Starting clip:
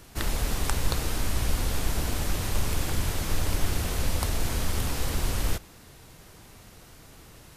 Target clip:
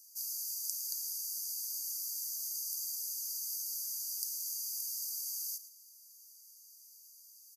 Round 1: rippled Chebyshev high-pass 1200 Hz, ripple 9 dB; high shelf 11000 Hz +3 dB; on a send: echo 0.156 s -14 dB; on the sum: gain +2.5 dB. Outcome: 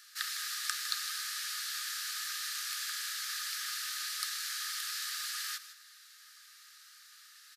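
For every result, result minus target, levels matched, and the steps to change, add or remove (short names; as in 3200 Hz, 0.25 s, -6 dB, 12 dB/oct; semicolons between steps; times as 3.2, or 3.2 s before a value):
echo 46 ms late; 4000 Hz band +8.0 dB
change: echo 0.11 s -14 dB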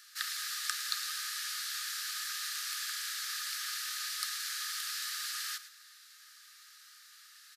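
4000 Hz band +8.0 dB
change: rippled Chebyshev high-pass 4600 Hz, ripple 9 dB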